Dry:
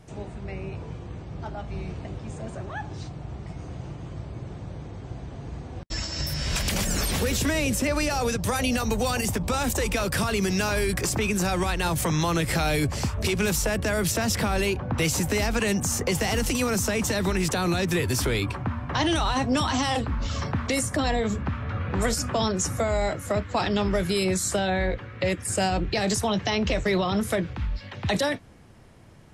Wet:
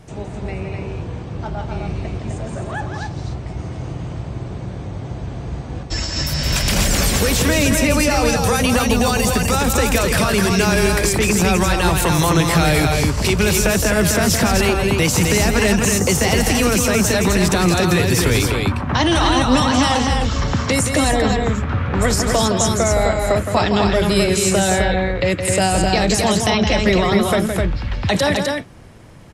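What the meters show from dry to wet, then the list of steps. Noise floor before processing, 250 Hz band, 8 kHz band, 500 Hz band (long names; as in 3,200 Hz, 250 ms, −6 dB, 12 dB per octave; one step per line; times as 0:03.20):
−40 dBFS, +9.0 dB, +9.0 dB, +9.0 dB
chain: loudspeakers that aren't time-aligned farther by 57 metres −7 dB, 88 metres −4 dB
level +7 dB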